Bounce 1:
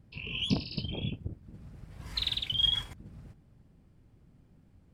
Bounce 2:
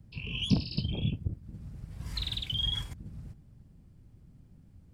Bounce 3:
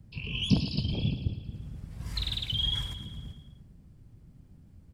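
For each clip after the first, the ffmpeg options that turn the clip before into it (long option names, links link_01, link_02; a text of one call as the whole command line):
ffmpeg -i in.wav -filter_complex "[0:a]bass=frequency=250:gain=8,treble=frequency=4000:gain=6,acrossover=split=210|830|1800[link_01][link_02][link_03][link_04];[link_04]alimiter=limit=-23.5dB:level=0:latency=1:release=135[link_05];[link_01][link_02][link_03][link_05]amix=inputs=4:normalize=0,volume=-2.5dB" out.wav
ffmpeg -i in.wav -af "aecho=1:1:112|224|336|448|560|672|784:0.282|0.169|0.101|0.0609|0.0365|0.0219|0.0131,volume=1.5dB" out.wav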